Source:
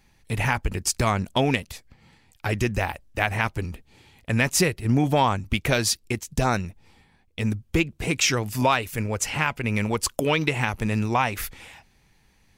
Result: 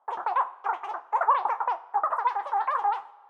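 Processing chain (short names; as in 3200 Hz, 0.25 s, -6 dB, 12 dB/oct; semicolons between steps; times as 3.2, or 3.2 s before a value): spectral trails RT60 0.57 s; Butterworth band-pass 250 Hz, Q 2.2; wide varispeed 3.81×; two-slope reverb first 0.58 s, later 2.4 s, from -17 dB, DRR 12.5 dB; gain +4.5 dB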